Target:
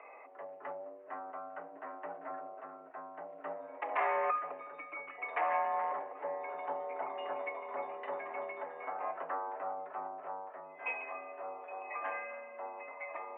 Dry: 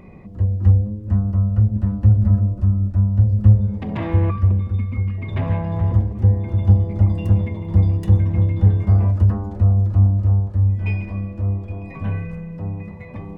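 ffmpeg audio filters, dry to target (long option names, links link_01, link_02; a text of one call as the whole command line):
ffmpeg -i in.wav -filter_complex "[0:a]asettb=1/sr,asplit=3[link_01][link_02][link_03];[link_01]atrim=end=8.514[link_04];[link_02]atrim=start=8.51:end=9.07,asetpts=PTS-STARTPTS,afade=type=in:duration=0.004:curve=qsin,afade=type=out:start_time=0.556:duration=0.004:curve=qsin,acompressor=threshold=-15dB:ratio=4[link_05];[link_03]atrim=start=9.066[link_06];[link_04][link_05]acrossfade=duration=0.004:curve1=hsin:curve2=qsin[link_07];[link_07][link_06]acrossfade=duration=0.004:curve1=qsin:curve2=hsin,highpass=frequency=560:width_type=q:width=0.5412,highpass=frequency=560:width_type=q:width=1.307,lowpass=frequency=2300:width_type=q:width=0.5176,lowpass=frequency=2300:width_type=q:width=0.7071,lowpass=frequency=2300:width_type=q:width=1.932,afreqshift=69,volume=1.5dB" out.wav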